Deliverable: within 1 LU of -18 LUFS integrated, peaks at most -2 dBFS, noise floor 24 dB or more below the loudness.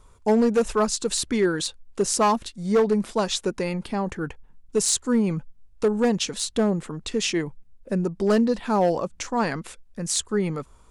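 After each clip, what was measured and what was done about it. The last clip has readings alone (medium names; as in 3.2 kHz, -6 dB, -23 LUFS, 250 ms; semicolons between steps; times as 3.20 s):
clipped samples 1.2%; clipping level -14.0 dBFS; loudness -24.0 LUFS; peak level -14.0 dBFS; loudness target -18.0 LUFS
-> clip repair -14 dBFS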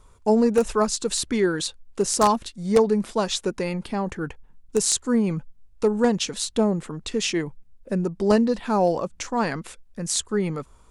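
clipped samples 0.0%; loudness -23.5 LUFS; peak level -5.0 dBFS; loudness target -18.0 LUFS
-> trim +5.5 dB; peak limiter -2 dBFS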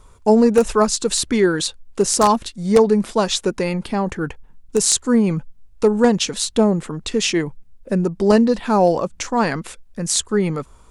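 loudness -18.5 LUFS; peak level -2.0 dBFS; noise floor -48 dBFS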